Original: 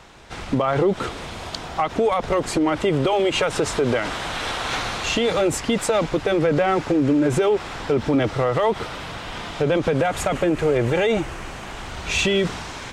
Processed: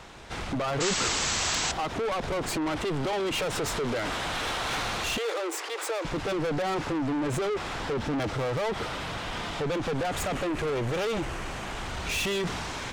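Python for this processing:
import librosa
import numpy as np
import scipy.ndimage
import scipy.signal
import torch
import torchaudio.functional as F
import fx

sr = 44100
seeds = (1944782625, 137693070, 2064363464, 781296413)

y = fx.tracing_dist(x, sr, depth_ms=0.031)
y = 10.0 ** (-26.5 / 20.0) * np.tanh(y / 10.0 ** (-26.5 / 20.0))
y = fx.spec_paint(y, sr, seeds[0], shape='noise', start_s=0.8, length_s=0.92, low_hz=750.0, high_hz=8100.0, level_db=-29.0)
y = fx.cheby_ripple_highpass(y, sr, hz=320.0, ripple_db=3, at=(5.18, 6.05))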